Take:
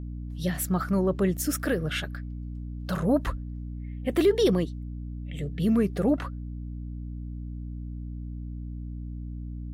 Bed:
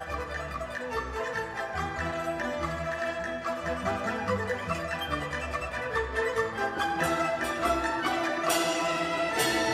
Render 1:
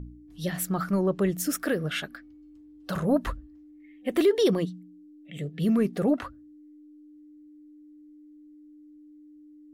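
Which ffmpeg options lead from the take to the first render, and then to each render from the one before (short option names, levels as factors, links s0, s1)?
-af "bandreject=f=60:t=h:w=4,bandreject=f=120:t=h:w=4,bandreject=f=180:t=h:w=4,bandreject=f=240:t=h:w=4"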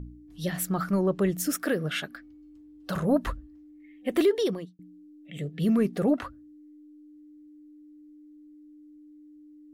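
-filter_complex "[0:a]asettb=1/sr,asplit=3[s0][s1][s2];[s0]atrim=end=1.534[s3];[s1]atrim=start=1.53:end=2.15,asetpts=PTS-STARTPTS,afade=t=in:d=0.004:c=qsin,afade=t=out:st=0.616:d=0.004:c=qsin,highpass=82[s4];[s2]atrim=start=2.146[s5];[s3][s4]acrossfade=d=0.004:c1=hsin:c2=qsin[s6];[s6][s5]acrossfade=d=0.004:c1=qsin:c2=hsin,asplit=2[s7][s8];[s7]atrim=end=4.79,asetpts=PTS-STARTPTS,afade=t=out:st=4.21:d=0.58[s9];[s8]atrim=start=4.79,asetpts=PTS-STARTPTS,afade=t=in:d=0.004:c=hsin[s10];[s9][s10]concat=n=2:v=0:a=1"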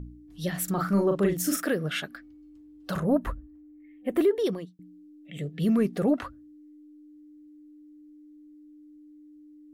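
-filter_complex "[0:a]asettb=1/sr,asplit=3[s0][s1][s2];[s0]atrim=end=0.644[s3];[s1]atrim=start=0.64:end=1.65,asetpts=PTS-STARTPTS,afade=t=in:d=0.004:c=qsin,afade=t=out:st=1.006:d=0.004:c=qsin,asplit=2[s4][s5];[s5]adelay=40,volume=0.631[s6];[s4][s6]amix=inputs=2:normalize=0,atrim=end_sample=44541[s7];[s2]atrim=start=1.646[s8];[s3][s7]acrossfade=d=0.004:c1=hsin:c2=qsin[s9];[s9][s8]acrossfade=d=0.004:c1=qsin:c2=hsin,asettb=1/sr,asplit=3[s10][s11][s12];[s10]atrim=end=3.004[s13];[s11]atrim=start=3:end=4.44,asetpts=PTS-STARTPTS,afade=t=in:d=0.004:c=qsin,afade=t=out:st=1.436:d=0.004:c=qsin,equalizer=f=4700:t=o:w=2:g=-11.5[s14];[s12]atrim=start=4.436[s15];[s13][s14]acrossfade=d=0.004:c1=hsin:c2=qsin[s16];[s16][s15]acrossfade=d=0.004:c1=qsin:c2=hsin"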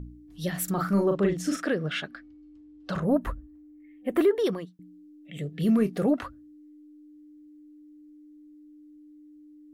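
-filter_complex "[0:a]asettb=1/sr,asplit=3[s0][s1][s2];[s0]atrim=end=1.164[s3];[s1]atrim=start=1.16:end=3.03,asetpts=PTS-STARTPTS,afade=t=in:d=0.004:c=qsin,afade=t=out:st=1.866:d=0.004:c=qsin,lowpass=5500[s4];[s2]atrim=start=3.026[s5];[s3][s4]acrossfade=d=0.004:c1=hsin:c2=qsin[s6];[s6][s5]acrossfade=d=0.004:c1=qsin:c2=hsin,asettb=1/sr,asplit=3[s7][s8][s9];[s7]atrim=end=4.164[s10];[s8]atrim=start=4.16:end=4.77,asetpts=PTS-STARTPTS,afade=t=in:d=0.004:c=qsin,afade=t=out:st=0.606:d=0.004:c=qsin,equalizer=f=1300:w=0.89:g=6.5[s11];[s9]atrim=start=4.766[s12];[s10][s11]acrossfade=d=0.004:c1=hsin:c2=qsin[s13];[s13][s12]acrossfade=d=0.004:c1=qsin:c2=hsin,asettb=1/sr,asplit=3[s14][s15][s16];[s14]atrim=end=5.494[s17];[s15]atrim=start=5.49:end=6.07,asetpts=PTS-STARTPTS,afade=t=in:d=0.004:c=qsin,afade=t=out:st=0.576:d=0.004:c=qsin,asplit=2[s18][s19];[s19]adelay=27,volume=0.237[s20];[s18][s20]amix=inputs=2:normalize=0,atrim=end_sample=25578[s21];[s16]atrim=start=6.066[s22];[s17][s21]acrossfade=d=0.004:c1=hsin:c2=qsin[s23];[s23][s22]acrossfade=d=0.004:c1=qsin:c2=hsin"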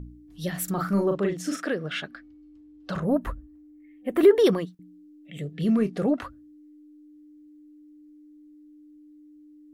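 -filter_complex "[0:a]asettb=1/sr,asplit=3[s0][s1][s2];[s0]atrim=end=1.184[s3];[s1]atrim=start=1.18:end=1.91,asetpts=PTS-STARTPTS,afade=t=in:d=0.004:c=qsin,afade=t=out:st=0.726:d=0.004:c=qsin,highpass=f=190:p=1[s4];[s2]atrim=start=1.906[s5];[s3][s4]acrossfade=d=0.004:c1=hsin:c2=qsin[s6];[s6][s5]acrossfade=d=0.004:c1=qsin:c2=hsin,asettb=1/sr,asplit=3[s7][s8][s9];[s7]atrim=end=4.234[s10];[s8]atrim=start=4.23:end=4.75,asetpts=PTS-STARTPTS,afade=t=in:d=0.004:c=qsin,afade=t=out:st=0.516:d=0.004:c=qsin,acontrast=77[s11];[s9]atrim=start=4.746[s12];[s10][s11]acrossfade=d=0.004:c1=hsin:c2=qsin[s13];[s13][s12]acrossfade=d=0.004:c1=qsin:c2=hsin,asettb=1/sr,asplit=3[s14][s15][s16];[s14]atrim=end=5.544[s17];[s15]atrim=start=5.54:end=6.2,asetpts=PTS-STARTPTS,afade=t=in:d=0.004:c=qsin,afade=t=out:st=0.656:d=0.004:c=qsin,lowpass=8600[s18];[s16]atrim=start=6.196[s19];[s17][s18]acrossfade=d=0.004:c1=hsin:c2=qsin[s20];[s20][s19]acrossfade=d=0.004:c1=qsin:c2=hsin"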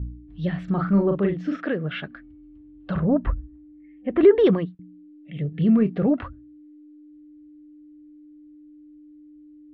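-af "lowpass=f=3200:w=0.5412,lowpass=f=3200:w=1.3066,equalizer=f=71:t=o:w=2.8:g=11.5"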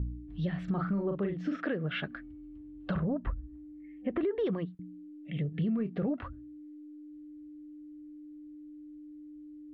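-af "alimiter=limit=0.188:level=0:latency=1:release=314,acompressor=threshold=0.0282:ratio=3"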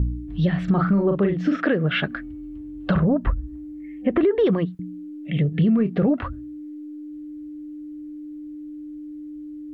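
-af "volume=3.98"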